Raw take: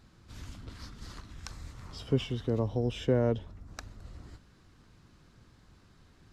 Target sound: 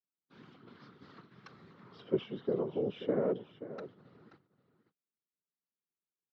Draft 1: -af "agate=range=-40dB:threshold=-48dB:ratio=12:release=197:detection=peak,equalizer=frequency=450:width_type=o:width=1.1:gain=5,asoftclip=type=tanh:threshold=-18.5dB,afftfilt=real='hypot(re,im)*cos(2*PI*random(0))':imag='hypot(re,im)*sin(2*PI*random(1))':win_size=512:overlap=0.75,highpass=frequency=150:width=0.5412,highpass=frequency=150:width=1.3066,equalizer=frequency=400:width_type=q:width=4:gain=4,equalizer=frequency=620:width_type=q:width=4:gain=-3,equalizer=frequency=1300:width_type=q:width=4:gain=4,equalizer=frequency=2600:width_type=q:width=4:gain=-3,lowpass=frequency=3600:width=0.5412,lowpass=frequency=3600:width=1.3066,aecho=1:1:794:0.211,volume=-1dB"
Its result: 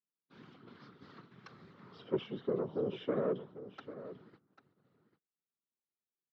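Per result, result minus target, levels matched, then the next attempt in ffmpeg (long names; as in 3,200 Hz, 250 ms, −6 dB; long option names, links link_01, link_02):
soft clipping: distortion +17 dB; echo 264 ms late
-af "agate=range=-40dB:threshold=-48dB:ratio=12:release=197:detection=peak,equalizer=frequency=450:width_type=o:width=1.1:gain=5,asoftclip=type=tanh:threshold=-8dB,afftfilt=real='hypot(re,im)*cos(2*PI*random(0))':imag='hypot(re,im)*sin(2*PI*random(1))':win_size=512:overlap=0.75,highpass=frequency=150:width=0.5412,highpass=frequency=150:width=1.3066,equalizer=frequency=400:width_type=q:width=4:gain=4,equalizer=frequency=620:width_type=q:width=4:gain=-3,equalizer=frequency=1300:width_type=q:width=4:gain=4,equalizer=frequency=2600:width_type=q:width=4:gain=-3,lowpass=frequency=3600:width=0.5412,lowpass=frequency=3600:width=1.3066,aecho=1:1:794:0.211,volume=-1dB"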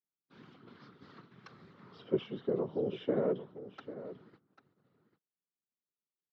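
echo 264 ms late
-af "agate=range=-40dB:threshold=-48dB:ratio=12:release=197:detection=peak,equalizer=frequency=450:width_type=o:width=1.1:gain=5,asoftclip=type=tanh:threshold=-8dB,afftfilt=real='hypot(re,im)*cos(2*PI*random(0))':imag='hypot(re,im)*sin(2*PI*random(1))':win_size=512:overlap=0.75,highpass=frequency=150:width=0.5412,highpass=frequency=150:width=1.3066,equalizer=frequency=400:width_type=q:width=4:gain=4,equalizer=frequency=620:width_type=q:width=4:gain=-3,equalizer=frequency=1300:width_type=q:width=4:gain=4,equalizer=frequency=2600:width_type=q:width=4:gain=-3,lowpass=frequency=3600:width=0.5412,lowpass=frequency=3600:width=1.3066,aecho=1:1:530:0.211,volume=-1dB"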